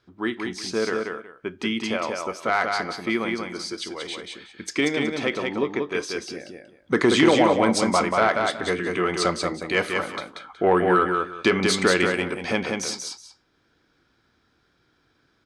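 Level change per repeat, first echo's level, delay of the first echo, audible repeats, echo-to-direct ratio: -13.0 dB, -4.0 dB, 185 ms, 2, -4.0 dB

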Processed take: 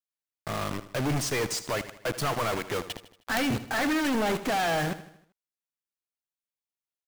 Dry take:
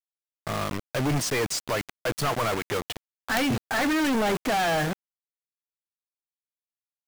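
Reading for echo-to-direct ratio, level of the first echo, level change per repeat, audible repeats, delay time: -13.0 dB, -14.0 dB, -6.0 dB, 4, 78 ms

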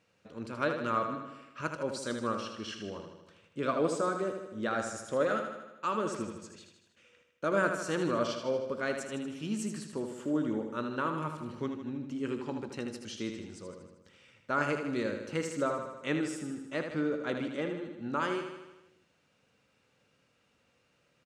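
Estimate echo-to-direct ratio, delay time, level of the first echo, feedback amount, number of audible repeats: -5.0 dB, 78 ms, -7.0 dB, 60%, 7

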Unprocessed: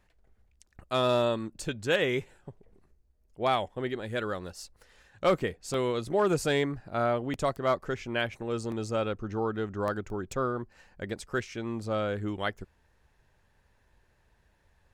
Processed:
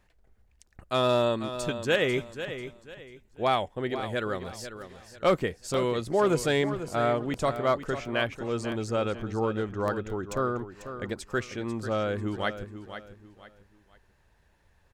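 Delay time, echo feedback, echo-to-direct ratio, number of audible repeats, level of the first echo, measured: 493 ms, 31%, -10.5 dB, 3, -11.0 dB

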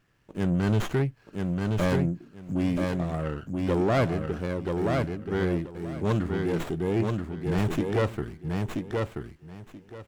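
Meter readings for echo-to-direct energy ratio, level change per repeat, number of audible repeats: -3.5 dB, -14.5 dB, 3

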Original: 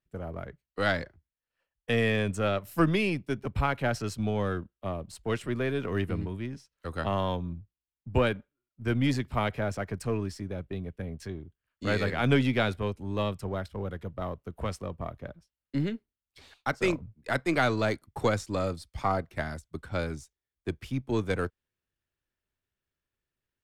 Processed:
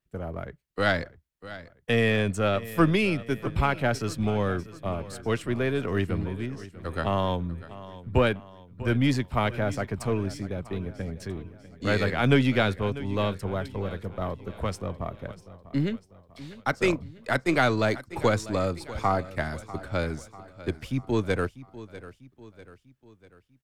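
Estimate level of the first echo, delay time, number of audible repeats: -16.5 dB, 645 ms, 4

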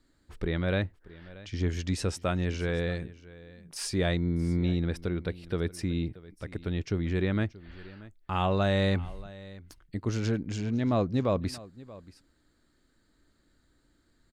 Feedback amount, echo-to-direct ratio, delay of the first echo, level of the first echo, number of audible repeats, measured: no regular repeats, -19.5 dB, 631 ms, -19.5 dB, 1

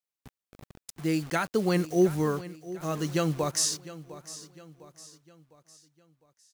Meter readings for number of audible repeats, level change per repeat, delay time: 3, -7.0 dB, 705 ms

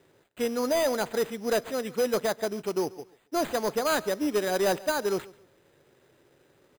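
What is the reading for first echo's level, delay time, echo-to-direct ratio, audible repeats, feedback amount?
-21.0 dB, 138 ms, -20.5 dB, 2, 26%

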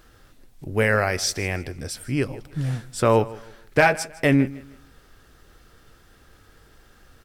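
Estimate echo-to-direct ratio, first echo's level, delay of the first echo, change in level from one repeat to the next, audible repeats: -19.0 dB, -19.5 dB, 157 ms, -10.0 dB, 2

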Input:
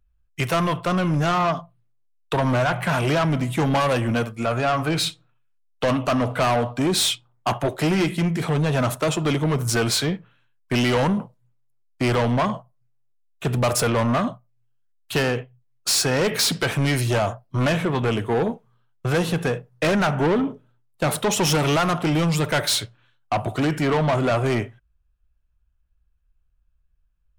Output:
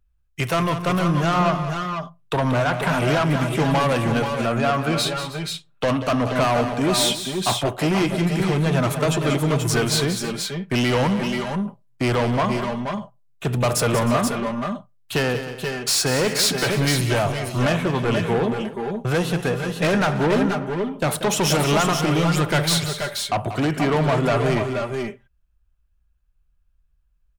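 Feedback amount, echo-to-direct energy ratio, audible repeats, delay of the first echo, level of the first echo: no regular repeats, -4.0 dB, 3, 187 ms, -10.5 dB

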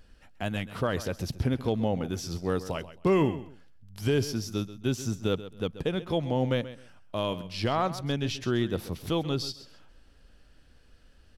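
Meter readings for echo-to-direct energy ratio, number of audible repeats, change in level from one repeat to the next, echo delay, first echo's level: -14.5 dB, 2, -13.0 dB, 133 ms, -14.5 dB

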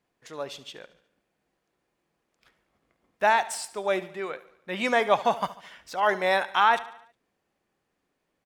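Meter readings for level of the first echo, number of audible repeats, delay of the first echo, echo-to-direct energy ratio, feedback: -17.0 dB, 4, 72 ms, -15.5 dB, 53%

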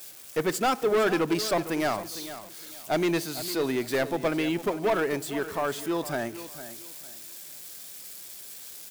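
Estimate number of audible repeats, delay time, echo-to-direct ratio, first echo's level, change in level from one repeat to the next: 2, 455 ms, -13.0 dB, -13.5 dB, -11.5 dB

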